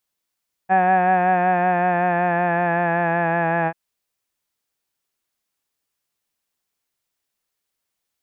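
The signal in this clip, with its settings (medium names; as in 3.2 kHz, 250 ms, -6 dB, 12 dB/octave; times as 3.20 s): formant vowel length 3.04 s, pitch 186 Hz, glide -2 st, vibrato depth 0.35 st, F1 760 Hz, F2 1.7 kHz, F3 2.5 kHz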